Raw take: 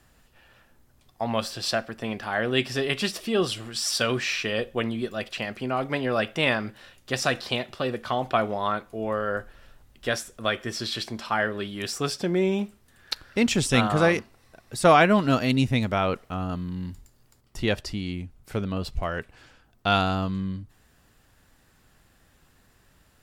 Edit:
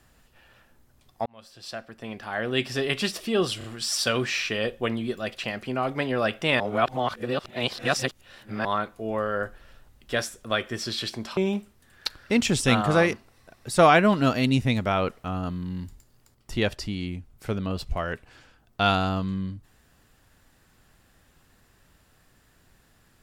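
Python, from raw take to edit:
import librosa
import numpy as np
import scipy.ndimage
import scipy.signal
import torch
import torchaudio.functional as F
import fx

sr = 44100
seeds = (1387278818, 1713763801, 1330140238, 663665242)

y = fx.edit(x, sr, fx.fade_in_span(start_s=1.26, length_s=1.61),
    fx.stutter(start_s=3.58, slice_s=0.03, count=3),
    fx.reverse_span(start_s=6.54, length_s=2.05),
    fx.cut(start_s=11.31, length_s=1.12), tone=tone)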